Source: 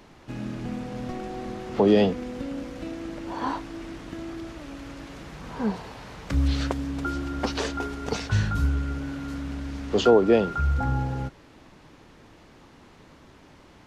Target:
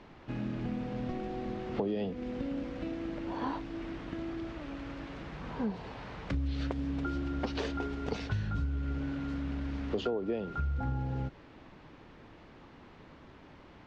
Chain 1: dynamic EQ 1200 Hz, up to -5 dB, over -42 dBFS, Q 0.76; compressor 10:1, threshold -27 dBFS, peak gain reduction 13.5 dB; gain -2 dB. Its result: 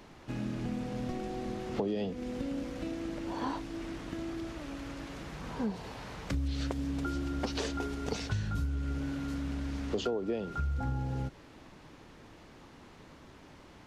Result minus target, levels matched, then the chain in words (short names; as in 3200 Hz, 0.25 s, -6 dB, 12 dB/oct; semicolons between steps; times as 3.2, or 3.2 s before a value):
4000 Hz band +3.5 dB
dynamic EQ 1200 Hz, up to -5 dB, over -42 dBFS, Q 0.76; LPF 3500 Hz 12 dB/oct; compressor 10:1, threshold -27 dBFS, peak gain reduction 13.5 dB; gain -2 dB